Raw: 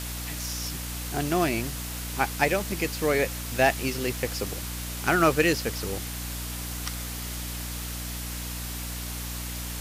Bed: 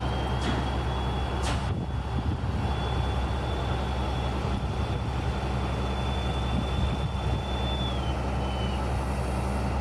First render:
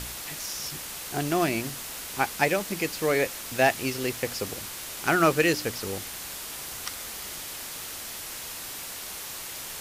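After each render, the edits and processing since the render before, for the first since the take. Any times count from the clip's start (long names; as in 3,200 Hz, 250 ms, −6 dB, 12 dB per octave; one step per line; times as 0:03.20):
hum removal 60 Hz, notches 5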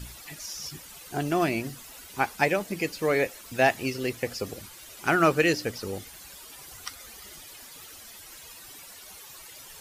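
broadband denoise 13 dB, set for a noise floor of −38 dBFS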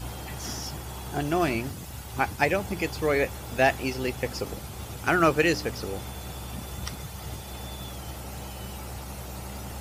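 mix in bed −10 dB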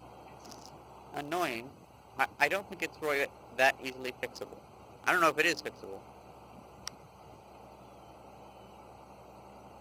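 adaptive Wiener filter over 25 samples
high-pass filter 1,100 Hz 6 dB per octave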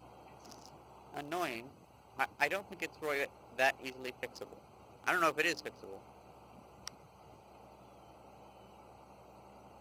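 level −4.5 dB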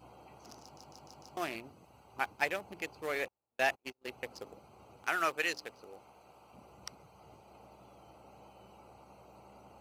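0:00.62: stutter in place 0.15 s, 5 plays
0:03.28–0:04.08: noise gate −44 dBFS, range −36 dB
0:05.04–0:06.54: low-shelf EQ 380 Hz −8 dB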